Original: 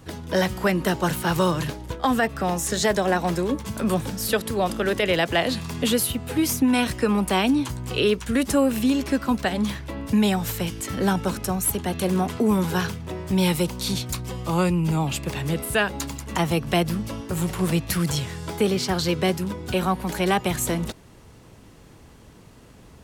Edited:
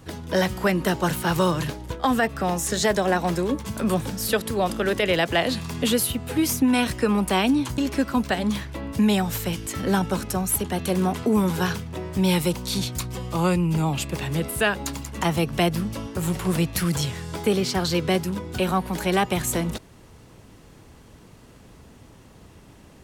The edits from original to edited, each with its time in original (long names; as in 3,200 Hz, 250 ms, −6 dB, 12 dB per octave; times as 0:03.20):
0:07.78–0:08.92: remove